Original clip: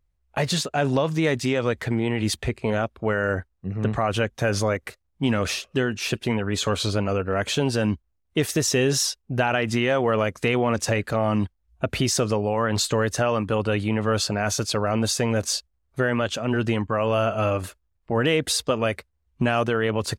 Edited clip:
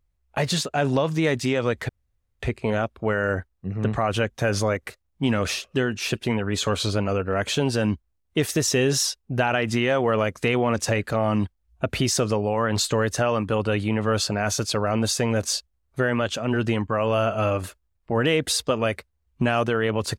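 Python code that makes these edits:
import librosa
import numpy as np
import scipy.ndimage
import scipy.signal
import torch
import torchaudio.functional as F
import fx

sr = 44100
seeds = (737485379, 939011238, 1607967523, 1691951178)

y = fx.edit(x, sr, fx.room_tone_fill(start_s=1.89, length_s=0.51), tone=tone)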